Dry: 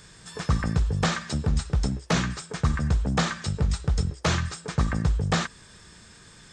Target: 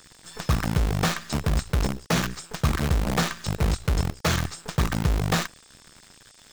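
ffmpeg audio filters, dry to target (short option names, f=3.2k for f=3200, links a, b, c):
-filter_complex "[0:a]acrossover=split=3000[a][b];[a]acrusher=bits=5:dc=4:mix=0:aa=0.000001[c];[c][b]amix=inputs=2:normalize=0"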